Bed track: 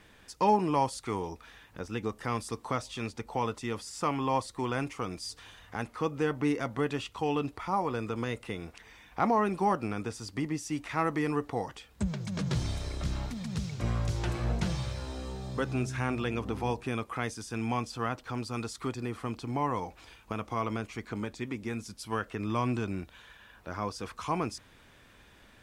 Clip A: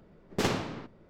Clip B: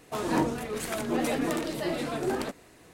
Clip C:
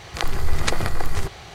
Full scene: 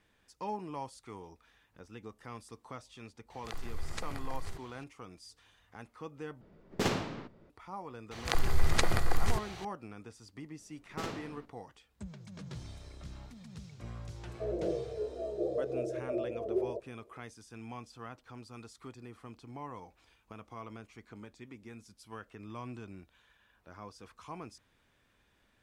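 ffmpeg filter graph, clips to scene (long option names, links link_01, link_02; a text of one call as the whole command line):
ffmpeg -i bed.wav -i cue0.wav -i cue1.wav -i cue2.wav -filter_complex "[3:a]asplit=2[link_01][link_02];[1:a]asplit=2[link_03][link_04];[0:a]volume=-13.5dB[link_05];[2:a]asuperpass=centerf=480:order=12:qfactor=1.5[link_06];[link_05]asplit=2[link_07][link_08];[link_07]atrim=end=6.414[link_09];[link_03]atrim=end=1.09,asetpts=PTS-STARTPTS,volume=-2.5dB[link_10];[link_08]atrim=start=7.496[link_11];[link_01]atrim=end=1.54,asetpts=PTS-STARTPTS,volume=-18dB,afade=type=in:duration=0.004:curve=hsin,afade=type=out:start_time=1.536:duration=0.004:curve=hsin,adelay=3300[link_12];[link_02]atrim=end=1.54,asetpts=PTS-STARTPTS,volume=-5.5dB,afade=type=in:duration=0.004:curve=hsin,afade=type=out:start_time=1.536:duration=0.004:curve=hsin,adelay=8110[link_13];[link_04]atrim=end=1.09,asetpts=PTS-STARTPTS,volume=-11.5dB,afade=type=in:duration=0.004:curve=hsin,afade=type=out:start_time=1.086:duration=0.004:curve=hsin,adelay=10590[link_14];[link_06]atrim=end=2.93,asetpts=PTS-STARTPTS,volume=-1dB,afade=type=in:duration=0.004:curve=hsin,afade=type=out:start_time=2.926:duration=0.004:curve=hsin,adelay=629748S[link_15];[link_09][link_10]acrossfade=duration=0.004:curve1=hsin:curve2=hsin[link_16];[link_16][link_11]acrossfade=duration=0.004:curve1=hsin:curve2=hsin[link_17];[link_17][link_12][link_13][link_14][link_15]amix=inputs=5:normalize=0" out.wav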